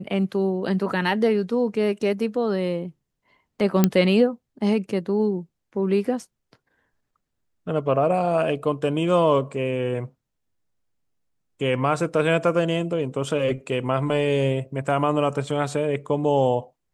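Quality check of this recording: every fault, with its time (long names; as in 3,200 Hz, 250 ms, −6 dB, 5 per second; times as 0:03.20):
0:03.84: click −3 dBFS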